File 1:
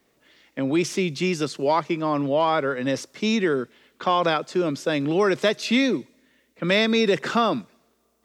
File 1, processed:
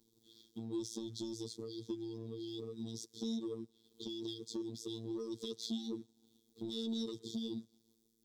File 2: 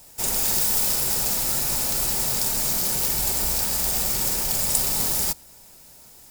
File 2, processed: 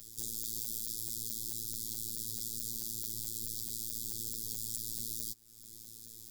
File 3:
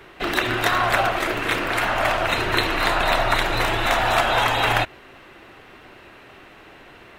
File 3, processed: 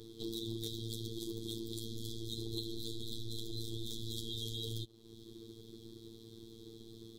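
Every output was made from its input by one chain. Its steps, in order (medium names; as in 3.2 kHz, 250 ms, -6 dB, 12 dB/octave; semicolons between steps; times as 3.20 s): FFT band-reject 450–3200 Hz; compression 2.5:1, threshold -43 dBFS; waveshaping leveller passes 1; robot voice 113 Hz; trim -3 dB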